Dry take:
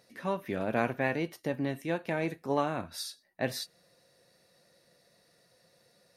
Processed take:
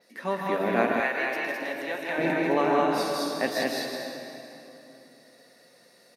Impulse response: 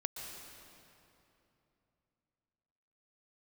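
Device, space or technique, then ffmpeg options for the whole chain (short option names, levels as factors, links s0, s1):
stadium PA: -filter_complex "[0:a]highpass=f=200:w=0.5412,highpass=f=200:w=1.3066,equalizer=f=1900:t=o:w=0.24:g=4.5,aecho=1:1:157.4|209.9:0.562|0.794[s0];[1:a]atrim=start_sample=2205[s1];[s0][s1]afir=irnorm=-1:irlink=0,asettb=1/sr,asplit=3[s2][s3][s4];[s2]atrim=end=1.004[s5];[s3]atrim=start=1:end=2.18,asetpts=PTS-STARTPTS,afade=t=in:d=0.004:c=qsin,afade=t=out:st=1.176:d=0.004:c=qsin,highpass=f=1100:p=1[s6];[s4]atrim=start=2.176[s7];[s5][s6]acrossfade=d=0.004:c1=hsin:c2=qsin[s8];[s8][s7]acrossfade=d=0.004:c1=qsin:c2=hsin,adynamicequalizer=threshold=0.00158:dfrequency=9200:dqfactor=0.77:tfrequency=9200:tqfactor=0.77:attack=5:release=100:ratio=0.375:range=2.5:mode=cutabove:tftype=bell,volume=1.78"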